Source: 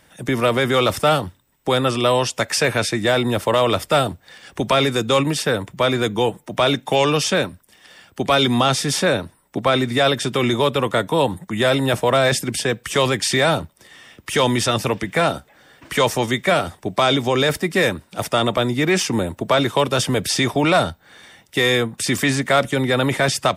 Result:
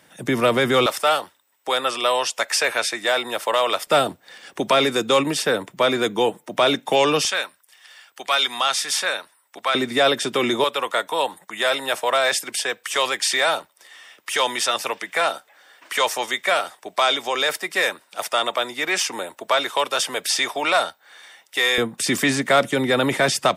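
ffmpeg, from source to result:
ffmpeg -i in.wav -af "asetnsamples=nb_out_samples=441:pad=0,asendcmd='0.86 highpass f 630;3.87 highpass f 250;7.25 highpass f 1000;9.75 highpass f 280;10.64 highpass f 680;21.78 highpass f 190',highpass=150" out.wav

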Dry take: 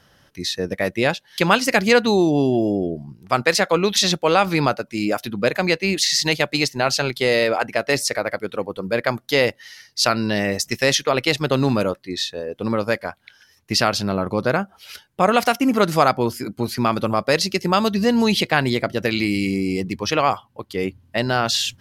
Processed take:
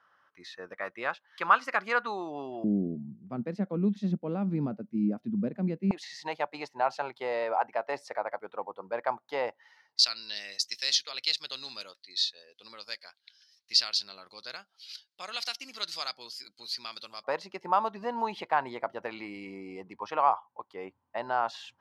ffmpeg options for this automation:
ffmpeg -i in.wav -af "asetnsamples=nb_out_samples=441:pad=0,asendcmd='2.64 bandpass f 210;5.91 bandpass f 880;9.99 bandpass f 4400;17.24 bandpass f 920',bandpass=frequency=1200:width_type=q:width=3.8:csg=0" out.wav

